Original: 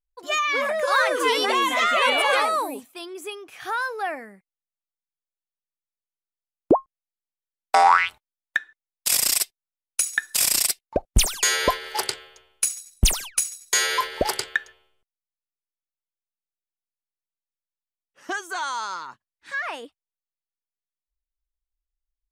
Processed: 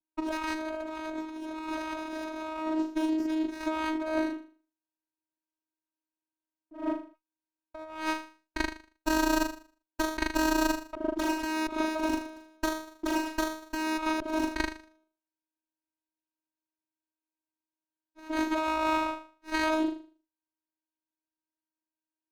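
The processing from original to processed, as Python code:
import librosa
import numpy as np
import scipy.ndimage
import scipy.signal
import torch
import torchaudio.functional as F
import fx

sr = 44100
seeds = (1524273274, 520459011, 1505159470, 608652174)

p1 = x + fx.room_flutter(x, sr, wall_m=6.7, rt60_s=0.41, dry=0)
p2 = fx.vocoder(p1, sr, bands=8, carrier='saw', carrier_hz=315.0)
p3 = fx.over_compress(p2, sr, threshold_db=-32.0, ratio=-1.0)
y = fx.running_max(p3, sr, window=9)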